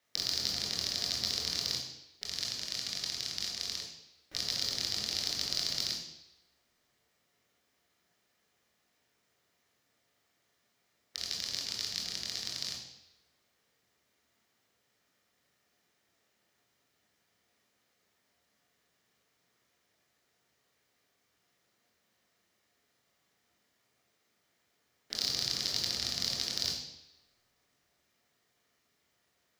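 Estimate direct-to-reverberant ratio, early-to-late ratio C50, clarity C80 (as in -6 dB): -1.0 dB, 5.0 dB, 8.0 dB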